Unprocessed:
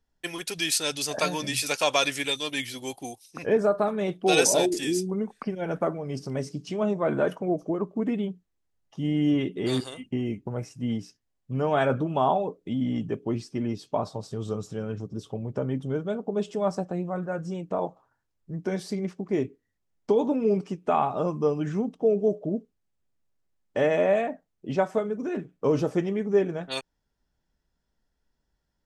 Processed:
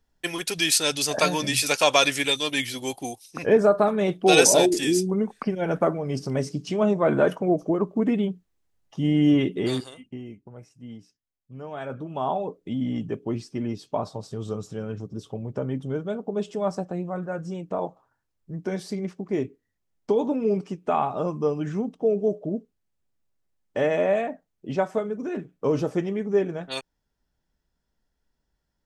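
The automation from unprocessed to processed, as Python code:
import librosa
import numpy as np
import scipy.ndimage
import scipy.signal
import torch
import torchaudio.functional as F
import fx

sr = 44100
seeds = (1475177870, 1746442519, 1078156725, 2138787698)

y = fx.gain(x, sr, db=fx.line((9.59, 4.5), (9.8, -2.5), (10.4, -12.0), (11.76, -12.0), (12.5, 0.0)))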